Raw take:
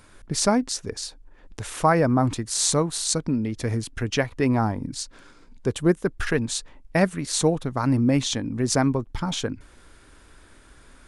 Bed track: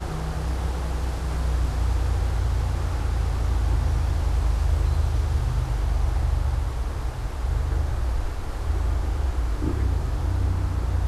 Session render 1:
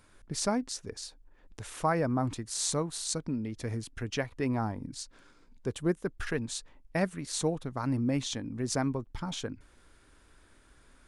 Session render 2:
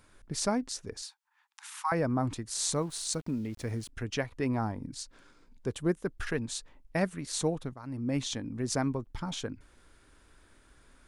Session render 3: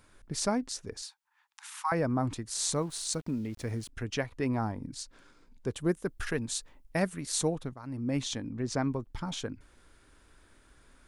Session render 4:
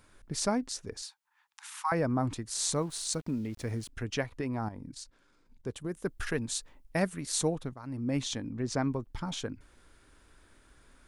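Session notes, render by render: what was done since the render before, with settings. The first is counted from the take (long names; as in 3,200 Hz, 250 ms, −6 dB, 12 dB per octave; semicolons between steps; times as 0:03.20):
level −9 dB
0:01.02–0:01.92: Butterworth high-pass 810 Hz 96 dB per octave; 0:02.76–0:03.89: centre clipping without the shift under −51 dBFS; 0:07.74–0:08.17: fade in quadratic, from −12.5 dB
0:05.81–0:07.49: high-shelf EQ 8,400 Hz +8.5 dB; 0:08.50–0:08.90: high-frequency loss of the air 79 metres
0:04.41–0:05.95: output level in coarse steps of 11 dB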